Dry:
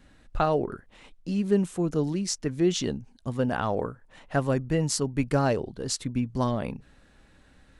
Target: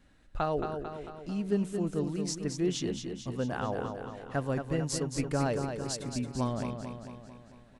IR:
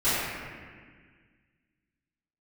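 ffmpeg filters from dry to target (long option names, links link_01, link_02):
-af "aecho=1:1:223|446|669|892|1115|1338|1561:0.473|0.27|0.154|0.0876|0.0499|0.0285|0.0162,volume=-6.5dB"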